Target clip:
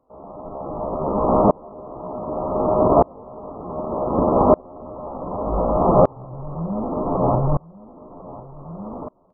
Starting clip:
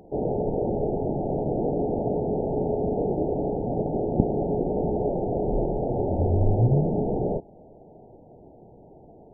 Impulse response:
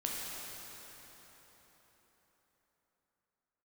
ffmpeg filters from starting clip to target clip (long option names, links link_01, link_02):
-filter_complex "[0:a]asplit=2[link_01][link_02];[1:a]atrim=start_sample=2205,atrim=end_sample=3969[link_03];[link_02][link_03]afir=irnorm=-1:irlink=0,volume=-10.5dB[link_04];[link_01][link_04]amix=inputs=2:normalize=0,apsyclip=12dB,asetrate=64194,aresample=44100,atempo=0.686977,asplit=2[link_05][link_06];[link_06]aecho=0:1:1048|2096|3144:0.376|0.0977|0.0254[link_07];[link_05][link_07]amix=inputs=2:normalize=0,aeval=exprs='val(0)*pow(10,-31*if(lt(mod(-0.66*n/s,1),2*abs(-0.66)/1000),1-mod(-0.66*n/s,1)/(2*abs(-0.66)/1000),(mod(-0.66*n/s,1)-2*abs(-0.66)/1000)/(1-2*abs(-0.66)/1000))/20)':channel_layout=same,volume=-1dB"